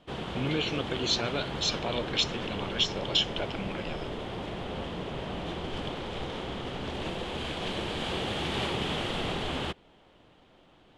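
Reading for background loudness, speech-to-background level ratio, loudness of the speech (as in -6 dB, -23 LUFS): -34.5 LUFS, 4.0 dB, -30.5 LUFS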